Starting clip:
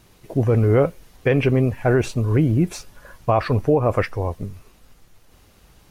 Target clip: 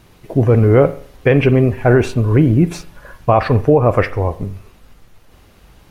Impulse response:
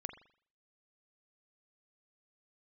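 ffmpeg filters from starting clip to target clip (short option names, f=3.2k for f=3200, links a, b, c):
-filter_complex "[0:a]asplit=2[a][b];[1:a]atrim=start_sample=2205,lowpass=4.6k[c];[b][c]afir=irnorm=-1:irlink=0,volume=0dB[d];[a][d]amix=inputs=2:normalize=0,volume=1.5dB"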